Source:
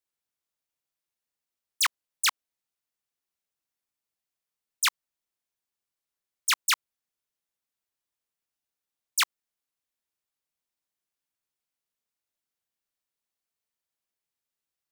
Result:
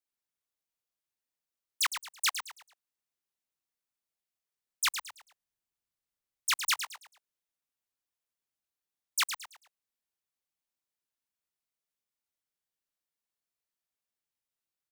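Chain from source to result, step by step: 4.87–6.68 s: bass shelf 140 Hz +10 dB; on a send: frequency-shifting echo 110 ms, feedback 33%, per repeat -74 Hz, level -9 dB; on the sum: trim -4.5 dB

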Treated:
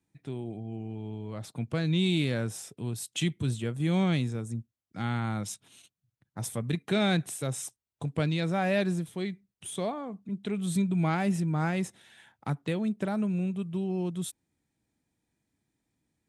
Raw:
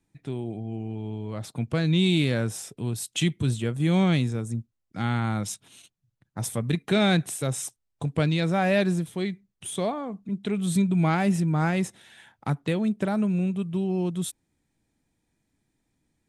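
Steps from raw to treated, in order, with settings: high-pass 52 Hz; trim -4.5 dB

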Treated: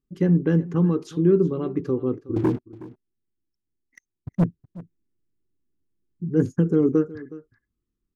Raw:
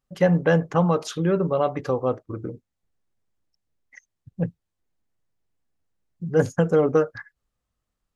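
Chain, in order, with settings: FFT filter 140 Hz 0 dB, 370 Hz +8 dB, 620 Hz -21 dB, 1.1 kHz -11 dB; 2.36–4.44 s: waveshaping leveller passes 3; on a send: delay 368 ms -18.5 dB

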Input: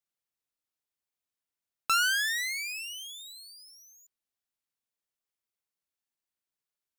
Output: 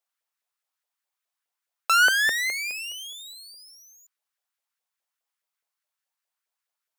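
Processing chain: LFO high-pass saw up 4.8 Hz 530–1700 Hz; trim +3.5 dB

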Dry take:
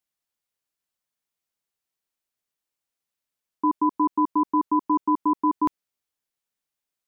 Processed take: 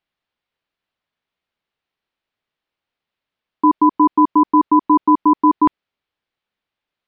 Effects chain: low-pass 3.8 kHz 24 dB/octave; trim +9 dB

